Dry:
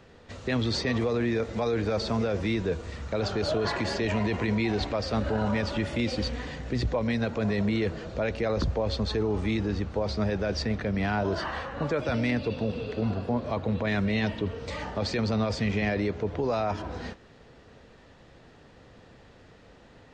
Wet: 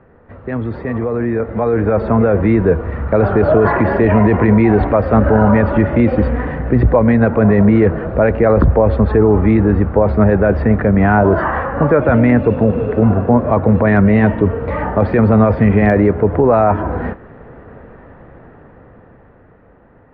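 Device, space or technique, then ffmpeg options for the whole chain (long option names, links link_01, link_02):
action camera in a waterproof case: -af "lowpass=frequency=1700:width=0.5412,lowpass=frequency=1700:width=1.3066,dynaudnorm=framelen=170:gausssize=21:maxgain=10.5dB,volume=6dB" -ar 44100 -c:a aac -b:a 128k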